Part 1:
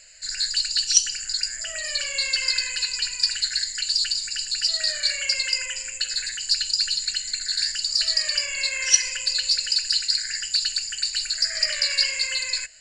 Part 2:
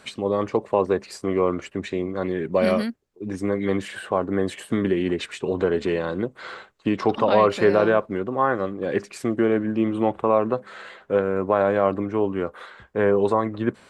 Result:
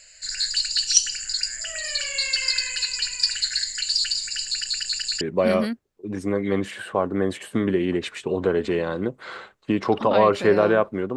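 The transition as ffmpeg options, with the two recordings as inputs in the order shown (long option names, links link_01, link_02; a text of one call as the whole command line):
ffmpeg -i cue0.wav -i cue1.wav -filter_complex "[0:a]apad=whole_dur=11.16,atrim=end=11.16,asplit=4[link_01][link_02][link_03][link_04];[link_01]atrim=end=4.642[link_05];[link_02]atrim=start=4.448:end=4.642[link_06];[link_03]atrim=start=4.448:end=4.642[link_07];[link_04]atrim=start=4.448:end=4.642[link_08];[1:a]atrim=start=2.378:end=8.33[link_09];[link_05][link_06]acrossfade=duration=0.004:curve1=hsin:curve2=hsin[link_10];[link_10][link_07]acrossfade=duration=0.004:curve1=hsin:curve2=hsin[link_11];[link_11][link_08]acrossfade=duration=0.004:curve1=hsin:curve2=hsin[link_12];[link_12][link_09]acrossfade=duration=0.004:curve1=hsin:curve2=hsin" out.wav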